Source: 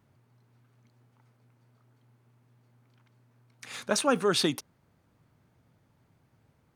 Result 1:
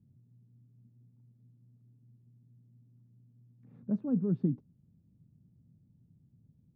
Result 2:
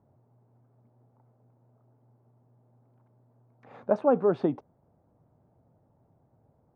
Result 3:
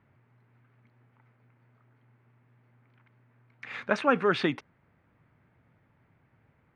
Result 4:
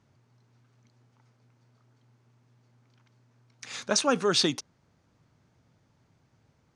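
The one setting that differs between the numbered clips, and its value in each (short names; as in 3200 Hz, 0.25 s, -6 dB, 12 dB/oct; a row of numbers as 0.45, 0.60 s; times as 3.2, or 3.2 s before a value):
synth low-pass, frequency: 190, 710, 2100, 6200 Hz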